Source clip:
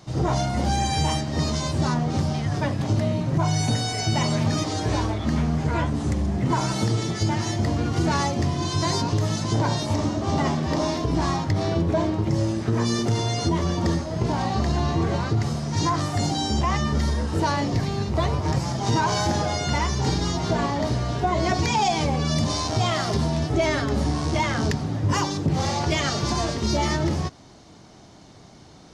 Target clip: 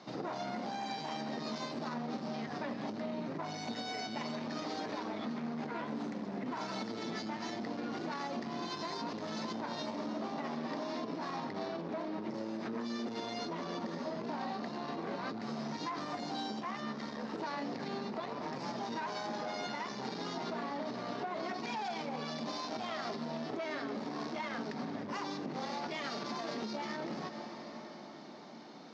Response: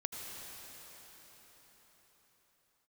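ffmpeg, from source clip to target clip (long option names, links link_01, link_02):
-filter_complex "[0:a]asplit=2[link_01][link_02];[1:a]atrim=start_sample=2205[link_03];[link_02][link_03]afir=irnorm=-1:irlink=0,volume=-11.5dB[link_04];[link_01][link_04]amix=inputs=2:normalize=0,aeval=exprs='clip(val(0),-1,0.0708)':channel_layout=same,alimiter=limit=-21dB:level=0:latency=1:release=107,highpass=frequency=220:width=0.5412,highpass=frequency=220:width=1.3066,equalizer=frequency=230:width_type=q:width=4:gain=5,equalizer=frequency=330:width_type=q:width=4:gain=-4,equalizer=frequency=3100:width_type=q:width=4:gain=-4,lowpass=frequency=4800:width=0.5412,lowpass=frequency=4800:width=1.3066,acompressor=threshold=-31dB:ratio=6,volume=-3.5dB"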